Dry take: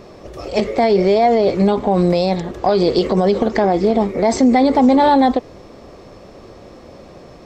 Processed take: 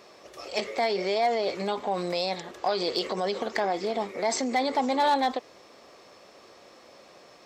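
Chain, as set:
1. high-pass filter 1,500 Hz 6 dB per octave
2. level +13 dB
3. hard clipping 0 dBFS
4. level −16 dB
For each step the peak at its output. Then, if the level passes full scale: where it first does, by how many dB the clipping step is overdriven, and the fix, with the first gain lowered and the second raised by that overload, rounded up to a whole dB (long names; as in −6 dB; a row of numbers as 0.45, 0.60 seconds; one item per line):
−9.0, +4.0, 0.0, −16.0 dBFS
step 2, 4.0 dB
step 2 +9 dB, step 4 −12 dB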